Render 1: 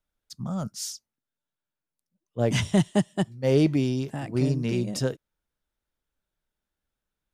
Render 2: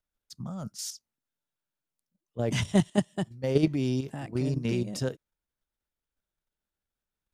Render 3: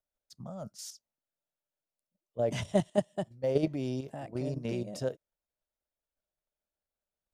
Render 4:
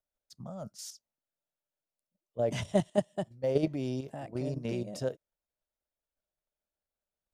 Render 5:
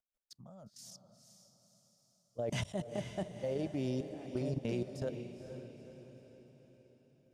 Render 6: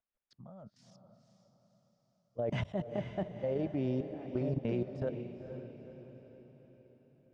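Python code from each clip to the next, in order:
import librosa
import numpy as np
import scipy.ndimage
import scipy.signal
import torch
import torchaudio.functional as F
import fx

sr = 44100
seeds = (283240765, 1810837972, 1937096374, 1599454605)

y1 = fx.level_steps(x, sr, step_db=9)
y2 = fx.peak_eq(y1, sr, hz=610.0, db=12.0, octaves=0.77)
y2 = y2 * 10.0 ** (-7.5 / 20.0)
y3 = y2
y4 = fx.level_steps(y3, sr, step_db=18)
y4 = fx.echo_diffused(y4, sr, ms=480, feedback_pct=50, wet_db=-9)
y4 = y4 * 10.0 ** (1.0 / 20.0)
y5 = scipy.signal.sosfilt(scipy.signal.butter(2, 2200.0, 'lowpass', fs=sr, output='sos'), y4)
y5 = y5 * 10.0 ** (2.5 / 20.0)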